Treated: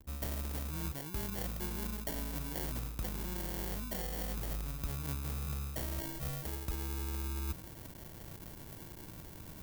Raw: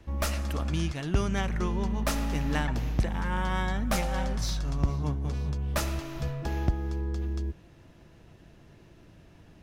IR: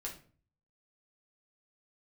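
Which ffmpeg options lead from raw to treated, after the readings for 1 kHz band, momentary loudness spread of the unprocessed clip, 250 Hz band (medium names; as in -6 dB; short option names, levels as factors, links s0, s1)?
-12.5 dB, 4 LU, -11.0 dB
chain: -af "acrusher=samples=35:mix=1:aa=0.000001,aemphasis=mode=production:type=50fm,areverse,acompressor=threshold=0.0112:ratio=10,areverse,anlmdn=0.0000398,volume=1.58"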